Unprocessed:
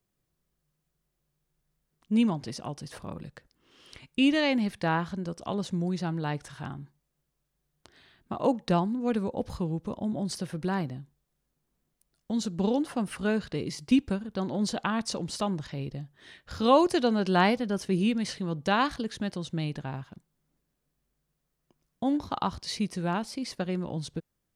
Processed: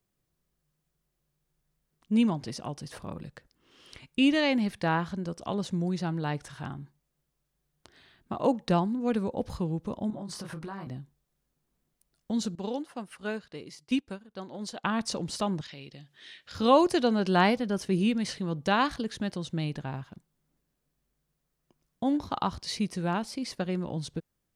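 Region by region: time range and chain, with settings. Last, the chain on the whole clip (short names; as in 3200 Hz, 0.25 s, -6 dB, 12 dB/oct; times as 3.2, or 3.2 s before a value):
10.1–10.87 bell 1100 Hz +10.5 dB 0.8 oct + doubler 25 ms -4 dB + compressor 10:1, threshold -35 dBFS
12.55–14.84 low shelf 260 Hz -10 dB + upward expander, over -50 dBFS
15.61–16.55 weighting filter D + compressor 1.5:1, threshold -56 dBFS
whole clip: dry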